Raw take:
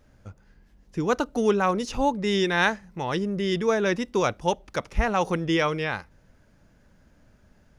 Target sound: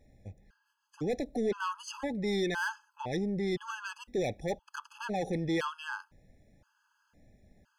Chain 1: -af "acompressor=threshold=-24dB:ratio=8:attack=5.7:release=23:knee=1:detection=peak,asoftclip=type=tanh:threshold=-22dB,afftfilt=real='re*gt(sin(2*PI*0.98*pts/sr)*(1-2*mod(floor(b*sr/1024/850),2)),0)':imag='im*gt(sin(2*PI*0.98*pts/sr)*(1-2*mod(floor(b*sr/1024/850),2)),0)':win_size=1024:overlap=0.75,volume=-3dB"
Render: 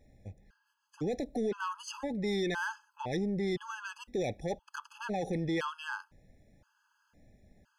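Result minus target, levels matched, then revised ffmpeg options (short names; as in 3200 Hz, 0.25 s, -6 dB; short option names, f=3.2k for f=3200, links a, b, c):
compressor: peak gain reduction +10 dB
-af "asoftclip=type=tanh:threshold=-22dB,afftfilt=real='re*gt(sin(2*PI*0.98*pts/sr)*(1-2*mod(floor(b*sr/1024/850),2)),0)':imag='im*gt(sin(2*PI*0.98*pts/sr)*(1-2*mod(floor(b*sr/1024/850),2)),0)':win_size=1024:overlap=0.75,volume=-3dB"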